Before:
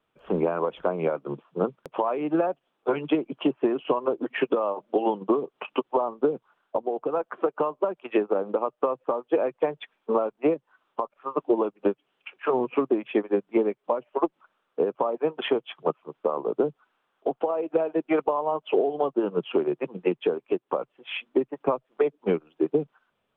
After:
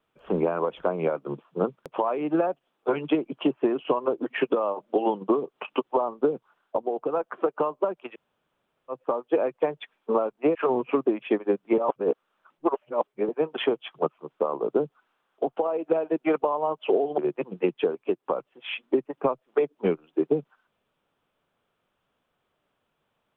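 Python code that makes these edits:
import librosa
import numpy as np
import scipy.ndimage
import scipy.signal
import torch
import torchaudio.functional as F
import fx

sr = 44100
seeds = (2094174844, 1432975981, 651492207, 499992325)

y = fx.edit(x, sr, fx.room_tone_fill(start_s=8.13, length_s=0.78, crossfade_s=0.06),
    fx.cut(start_s=10.55, length_s=1.84),
    fx.reverse_span(start_s=13.62, length_s=1.51),
    fx.cut(start_s=19.02, length_s=0.59), tone=tone)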